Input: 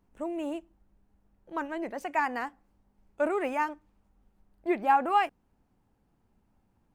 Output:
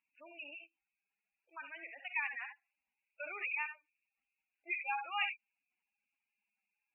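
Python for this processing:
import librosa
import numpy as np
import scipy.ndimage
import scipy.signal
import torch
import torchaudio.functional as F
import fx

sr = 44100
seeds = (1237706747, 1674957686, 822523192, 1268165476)

y = fx.bandpass_q(x, sr, hz=2500.0, q=6.5)
y = fx.rev_gated(y, sr, seeds[0], gate_ms=90, shape='rising', drr_db=5.5)
y = fx.spec_gate(y, sr, threshold_db=-10, keep='strong')
y = F.gain(torch.from_numpy(y), 7.5).numpy()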